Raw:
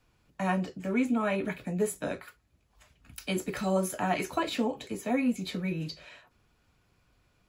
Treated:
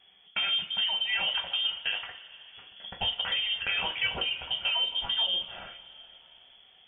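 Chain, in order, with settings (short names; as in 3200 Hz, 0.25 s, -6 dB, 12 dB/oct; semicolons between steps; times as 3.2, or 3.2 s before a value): limiter -22 dBFS, peak gain reduction 7 dB; compressor, threshold -33 dBFS, peak gain reduction 8 dB; inverted band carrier 3100 Hz; two-slope reverb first 0.26 s, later 4.3 s, from -21 dB, DRR 3.5 dB; speed mistake 44.1 kHz file played as 48 kHz; gain +6 dB; MP3 40 kbps 48000 Hz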